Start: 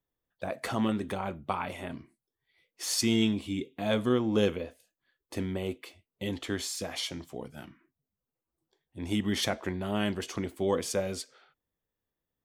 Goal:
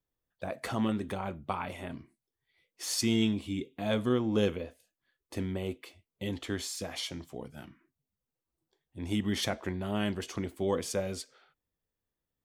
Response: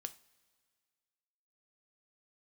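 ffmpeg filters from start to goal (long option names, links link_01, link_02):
-af "lowshelf=frequency=130:gain=4.5,volume=-2.5dB"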